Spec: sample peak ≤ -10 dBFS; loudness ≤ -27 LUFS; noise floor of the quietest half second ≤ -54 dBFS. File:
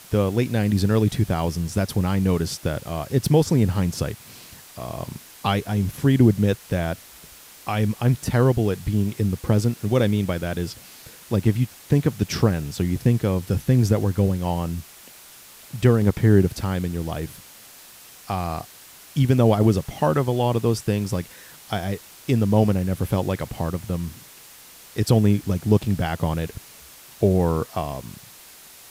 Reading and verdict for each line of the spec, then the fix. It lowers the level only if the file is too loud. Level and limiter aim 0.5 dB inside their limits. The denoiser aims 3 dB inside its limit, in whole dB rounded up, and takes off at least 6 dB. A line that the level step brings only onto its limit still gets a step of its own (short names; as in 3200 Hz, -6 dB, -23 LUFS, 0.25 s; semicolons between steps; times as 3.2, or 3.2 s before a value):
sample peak -6.0 dBFS: fail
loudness -22.5 LUFS: fail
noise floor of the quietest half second -46 dBFS: fail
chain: denoiser 6 dB, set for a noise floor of -46 dBFS; gain -5 dB